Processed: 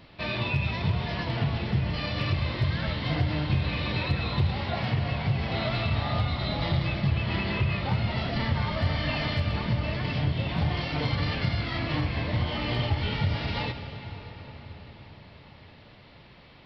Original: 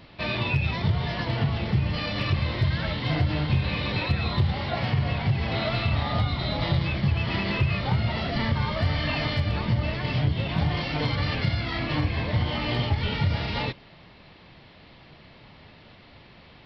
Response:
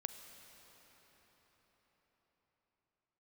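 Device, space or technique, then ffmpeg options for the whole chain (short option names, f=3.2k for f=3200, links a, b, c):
cathedral: -filter_complex "[1:a]atrim=start_sample=2205[a];[0:a][a]afir=irnorm=-1:irlink=0,asettb=1/sr,asplit=3[b][c][d];[b]atrim=end=7.094[e];[c]atrim=start=7.09:end=7.89,asetpts=PTS-STARTPTS,afade=t=in:d=0.004:c=qsin,afade=t=out:st=0.796:d=0.004:c=qsin,lowpass=5.2k[f];[d]atrim=start=7.886[g];[e][f]acrossfade=d=0.004:c1=hsin:c2=qsin[h];[h][g]acrossfade=d=0.004:c1=qsin:c2=hsin"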